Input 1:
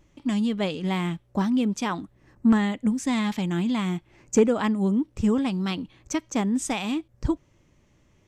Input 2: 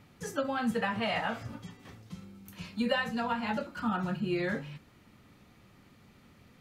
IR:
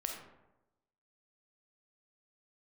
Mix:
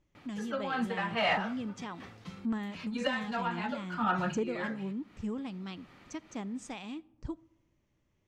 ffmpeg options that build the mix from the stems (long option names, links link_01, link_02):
-filter_complex "[0:a]lowpass=6900,volume=-15dB,asplit=3[link_01][link_02][link_03];[link_02]volume=-18.5dB[link_04];[1:a]highshelf=frequency=9400:gain=-7.5,asplit=2[link_05][link_06];[link_06]highpass=frequency=720:poles=1,volume=10dB,asoftclip=type=tanh:threshold=-16.5dB[link_07];[link_05][link_07]amix=inputs=2:normalize=0,lowpass=frequency=3200:poles=1,volume=-6dB,adelay=150,volume=2dB[link_08];[link_03]apad=whole_len=297871[link_09];[link_08][link_09]sidechaincompress=threshold=-46dB:ratio=8:attack=49:release=235[link_10];[2:a]atrim=start_sample=2205[link_11];[link_04][link_11]afir=irnorm=-1:irlink=0[link_12];[link_01][link_10][link_12]amix=inputs=3:normalize=0"